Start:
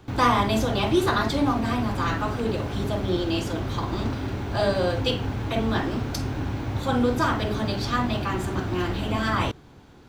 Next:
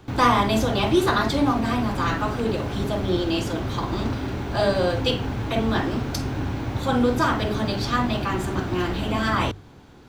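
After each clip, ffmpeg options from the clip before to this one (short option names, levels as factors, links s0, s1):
-af "bandreject=f=50:t=h:w=6,bandreject=f=100:t=h:w=6,volume=1.26"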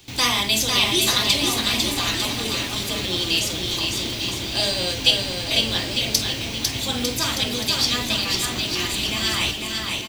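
-af "aecho=1:1:500|900|1220|1476|1681:0.631|0.398|0.251|0.158|0.1,aexciter=amount=10.1:drive=2.5:freq=2100,volume=0.398"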